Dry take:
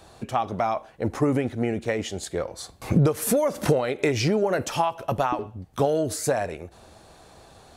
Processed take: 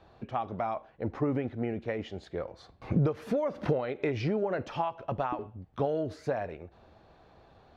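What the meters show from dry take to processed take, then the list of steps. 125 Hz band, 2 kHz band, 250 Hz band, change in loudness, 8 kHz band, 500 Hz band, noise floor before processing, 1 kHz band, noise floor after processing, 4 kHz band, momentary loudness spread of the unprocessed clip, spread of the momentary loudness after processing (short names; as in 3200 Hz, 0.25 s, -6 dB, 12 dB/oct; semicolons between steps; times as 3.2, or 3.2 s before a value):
-6.5 dB, -9.0 dB, -7.0 dB, -7.5 dB, under -25 dB, -7.0 dB, -52 dBFS, -7.5 dB, -60 dBFS, -14.0 dB, 9 LU, 10 LU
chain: air absorption 270 m; gain -6.5 dB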